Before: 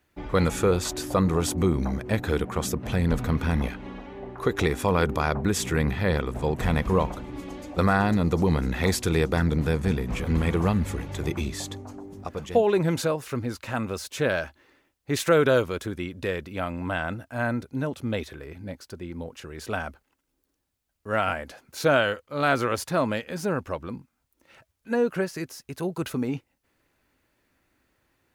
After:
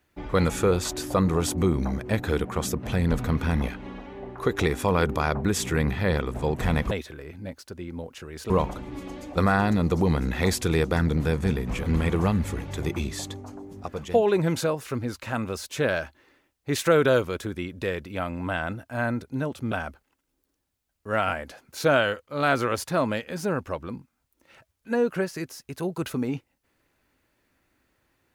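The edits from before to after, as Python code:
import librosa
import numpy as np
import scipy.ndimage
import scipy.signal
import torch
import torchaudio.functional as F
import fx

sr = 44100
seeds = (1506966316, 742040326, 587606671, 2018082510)

y = fx.edit(x, sr, fx.move(start_s=18.13, length_s=1.59, to_s=6.91), tone=tone)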